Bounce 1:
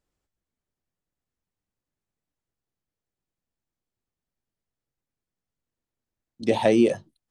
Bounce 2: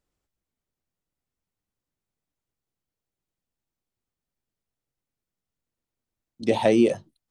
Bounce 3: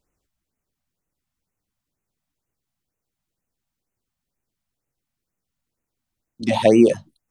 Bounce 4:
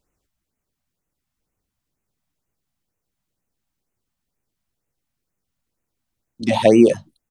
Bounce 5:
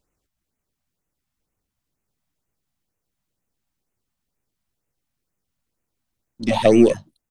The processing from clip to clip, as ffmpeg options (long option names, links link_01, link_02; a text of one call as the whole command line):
ffmpeg -i in.wav -af "bandreject=frequency=1700:width=23" out.wav
ffmpeg -i in.wav -af "afftfilt=real='re*(1-between(b*sr/1024,360*pow(4300/360,0.5+0.5*sin(2*PI*2.1*pts/sr))/1.41,360*pow(4300/360,0.5+0.5*sin(2*PI*2.1*pts/sr))*1.41))':imag='im*(1-between(b*sr/1024,360*pow(4300/360,0.5+0.5*sin(2*PI*2.1*pts/sr))/1.41,360*pow(4300/360,0.5+0.5*sin(2*PI*2.1*pts/sr))*1.41))':win_size=1024:overlap=0.75,volume=5.5dB" out.wav
ffmpeg -i in.wav -filter_complex "[0:a]asplit=2[link_01][link_02];[link_02]adelay=1399,volume=-7dB,highshelf=frequency=4000:gain=-31.5[link_03];[link_01][link_03]amix=inputs=2:normalize=0,volume=1.5dB" out.wav
ffmpeg -i in.wav -af "aeval=exprs='if(lt(val(0),0),0.708*val(0),val(0))':channel_layout=same" out.wav